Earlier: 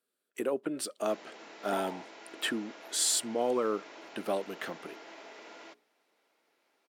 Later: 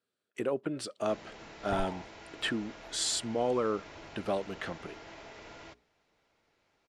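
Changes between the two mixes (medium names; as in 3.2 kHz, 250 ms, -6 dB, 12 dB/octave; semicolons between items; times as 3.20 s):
speech: add band-pass 240–6400 Hz; master: remove high-pass 250 Hz 24 dB/octave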